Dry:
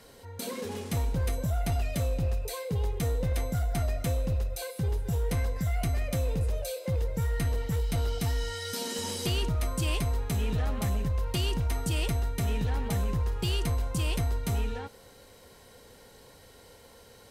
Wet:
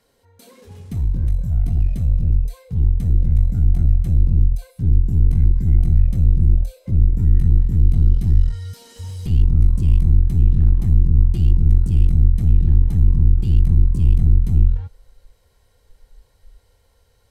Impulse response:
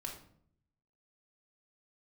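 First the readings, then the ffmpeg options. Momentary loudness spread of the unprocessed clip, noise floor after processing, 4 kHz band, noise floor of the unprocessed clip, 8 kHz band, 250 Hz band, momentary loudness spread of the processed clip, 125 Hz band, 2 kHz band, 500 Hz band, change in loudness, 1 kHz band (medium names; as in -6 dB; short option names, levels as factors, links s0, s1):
4 LU, -59 dBFS, under -10 dB, -54 dBFS, under -10 dB, +7.0 dB, 6 LU, +13.0 dB, under -10 dB, -8.0 dB, +13.0 dB, under -10 dB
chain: -af "asubboost=boost=8:cutoff=74,aeval=exprs='clip(val(0),-1,0.0422)':c=same,afwtdn=0.0631,volume=2"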